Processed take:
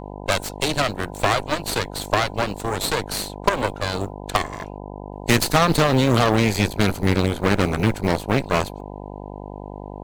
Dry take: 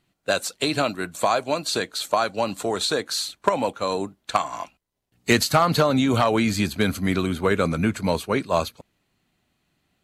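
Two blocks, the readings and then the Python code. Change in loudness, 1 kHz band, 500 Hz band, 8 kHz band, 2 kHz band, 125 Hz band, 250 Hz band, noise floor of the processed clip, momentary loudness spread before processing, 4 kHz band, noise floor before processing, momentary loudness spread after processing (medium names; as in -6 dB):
+1.5 dB, +1.0 dB, +0.5 dB, +1.5 dB, +3.0 dB, +5.5 dB, +1.5 dB, -35 dBFS, 7 LU, +1.0 dB, -73 dBFS, 19 LU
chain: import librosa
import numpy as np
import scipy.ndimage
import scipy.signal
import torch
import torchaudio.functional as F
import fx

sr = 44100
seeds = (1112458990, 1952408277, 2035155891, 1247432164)

y = fx.low_shelf(x, sr, hz=110.0, db=9.5)
y = fx.cheby_harmonics(y, sr, harmonics=(7, 8), levels_db=(-24, -14), full_scale_db=-4.5)
y = fx.quant_float(y, sr, bits=4)
y = fx.dmg_buzz(y, sr, base_hz=50.0, harmonics=20, level_db=-35.0, tilt_db=-2, odd_only=False)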